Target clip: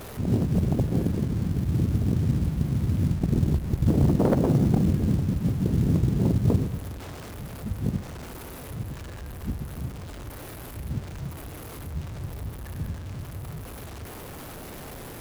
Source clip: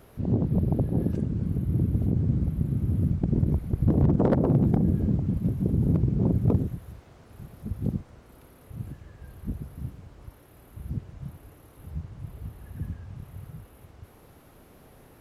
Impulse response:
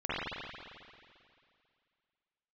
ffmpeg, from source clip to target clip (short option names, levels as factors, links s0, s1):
-filter_complex "[0:a]aeval=exprs='val(0)+0.5*0.0168*sgn(val(0))':c=same,asplit=2[s0][s1];[1:a]atrim=start_sample=2205,adelay=57[s2];[s1][s2]afir=irnorm=-1:irlink=0,volume=0.0531[s3];[s0][s3]amix=inputs=2:normalize=0,acrusher=bits=7:mode=log:mix=0:aa=0.000001"